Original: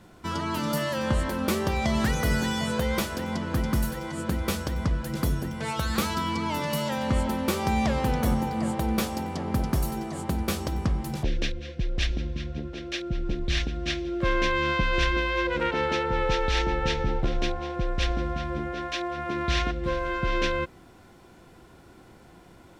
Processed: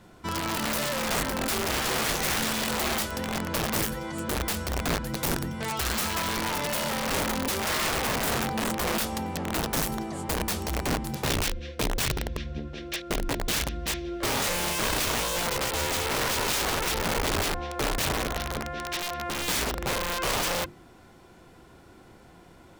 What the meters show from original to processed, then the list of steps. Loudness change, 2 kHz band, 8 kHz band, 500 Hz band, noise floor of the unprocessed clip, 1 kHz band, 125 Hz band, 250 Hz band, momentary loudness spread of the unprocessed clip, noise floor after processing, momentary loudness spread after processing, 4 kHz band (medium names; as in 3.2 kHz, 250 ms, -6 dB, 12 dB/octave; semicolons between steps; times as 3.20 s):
0.0 dB, +0.5 dB, +9.5 dB, -1.5 dB, -52 dBFS, -0.5 dB, -5.0 dB, -4.0 dB, 7 LU, -52 dBFS, 6 LU, +4.0 dB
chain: integer overflow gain 22 dB; hum notches 50/100/150/200/250/300/350 Hz